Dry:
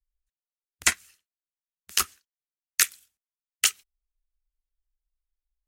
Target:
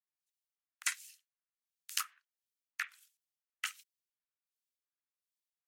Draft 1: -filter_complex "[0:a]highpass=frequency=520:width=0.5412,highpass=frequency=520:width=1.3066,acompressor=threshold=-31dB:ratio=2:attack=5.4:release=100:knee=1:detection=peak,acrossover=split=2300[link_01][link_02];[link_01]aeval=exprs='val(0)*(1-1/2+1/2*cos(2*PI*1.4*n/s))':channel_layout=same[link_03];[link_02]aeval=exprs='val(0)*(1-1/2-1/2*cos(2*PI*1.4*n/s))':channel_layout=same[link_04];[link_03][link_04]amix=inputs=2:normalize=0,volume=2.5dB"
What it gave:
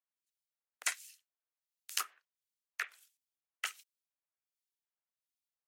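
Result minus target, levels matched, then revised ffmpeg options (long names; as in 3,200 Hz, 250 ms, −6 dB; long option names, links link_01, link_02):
500 Hz band +16.5 dB
-filter_complex "[0:a]highpass=frequency=1100:width=0.5412,highpass=frequency=1100:width=1.3066,acompressor=threshold=-31dB:ratio=2:attack=5.4:release=100:knee=1:detection=peak,acrossover=split=2300[link_01][link_02];[link_01]aeval=exprs='val(0)*(1-1/2+1/2*cos(2*PI*1.4*n/s))':channel_layout=same[link_03];[link_02]aeval=exprs='val(0)*(1-1/2-1/2*cos(2*PI*1.4*n/s))':channel_layout=same[link_04];[link_03][link_04]amix=inputs=2:normalize=0,volume=2.5dB"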